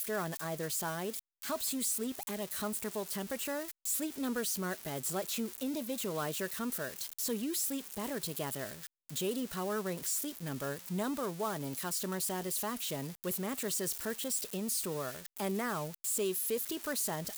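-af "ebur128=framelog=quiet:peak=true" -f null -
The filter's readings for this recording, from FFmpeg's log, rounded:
Integrated loudness:
  I:         -35.4 LUFS
  Threshold: -45.4 LUFS
Loudness range:
  LRA:         1.8 LU
  Threshold: -55.5 LUFS
  LRA low:   -36.3 LUFS
  LRA high:  -34.5 LUFS
True peak:
  Peak:      -23.2 dBFS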